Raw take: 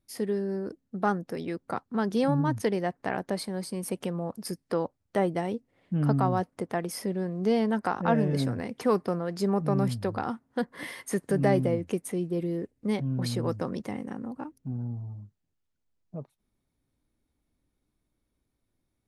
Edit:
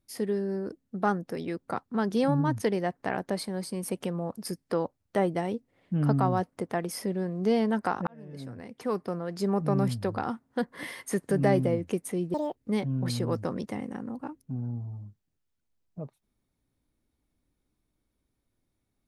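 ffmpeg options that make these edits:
ffmpeg -i in.wav -filter_complex "[0:a]asplit=4[link_01][link_02][link_03][link_04];[link_01]atrim=end=8.07,asetpts=PTS-STARTPTS,afade=type=out:start_time=8.066:duration=0.004:curve=hsin[link_05];[link_02]atrim=start=8.07:end=12.344,asetpts=PTS-STARTPTS,afade=type=in:duration=1.59[link_06];[link_03]atrim=start=12.34:end=12.72,asetpts=PTS-STARTPTS,asetrate=77175,aresample=44100[link_07];[link_04]atrim=start=12.716[link_08];[link_05][link_06]concat=n=2:v=0:a=1[link_09];[link_09][link_07]acrossfade=duration=0.004:curve1=hsin:curve2=hsin[link_10];[link_10][link_08]acrossfade=duration=0.004:curve1=hsin:curve2=hsin" out.wav

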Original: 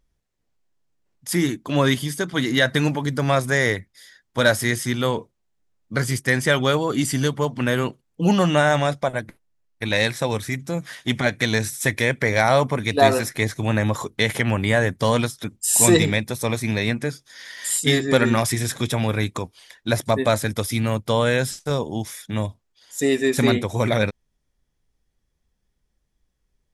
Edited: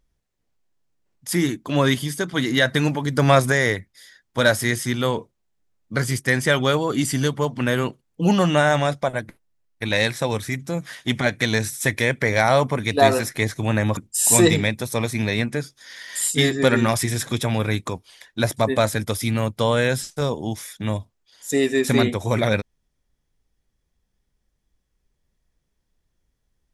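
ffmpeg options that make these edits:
ffmpeg -i in.wav -filter_complex "[0:a]asplit=4[link_01][link_02][link_03][link_04];[link_01]atrim=end=3.172[link_05];[link_02]atrim=start=3.168:end=3.522,asetpts=PTS-STARTPTS,volume=4.5dB[link_06];[link_03]atrim=start=3.518:end=13.972[link_07];[link_04]atrim=start=15.458[link_08];[link_05][link_06]acrossfade=duration=0.004:curve1=hsin:curve2=hsin[link_09];[link_09][link_07]acrossfade=duration=0.004:curve1=hsin:curve2=hsin[link_10];[link_10][link_08]acrossfade=duration=0.004:curve1=hsin:curve2=hsin" out.wav

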